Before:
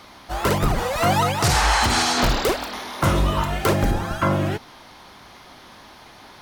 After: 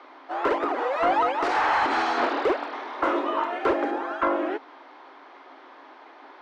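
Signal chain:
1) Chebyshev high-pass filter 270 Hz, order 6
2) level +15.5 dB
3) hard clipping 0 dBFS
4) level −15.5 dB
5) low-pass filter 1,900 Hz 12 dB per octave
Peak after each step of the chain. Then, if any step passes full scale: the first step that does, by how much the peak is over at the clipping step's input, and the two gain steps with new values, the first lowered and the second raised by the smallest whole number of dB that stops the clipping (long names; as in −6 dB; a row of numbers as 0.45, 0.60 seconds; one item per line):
−7.5, +8.0, 0.0, −15.5, −15.0 dBFS
step 2, 8.0 dB
step 2 +7.5 dB, step 4 −7.5 dB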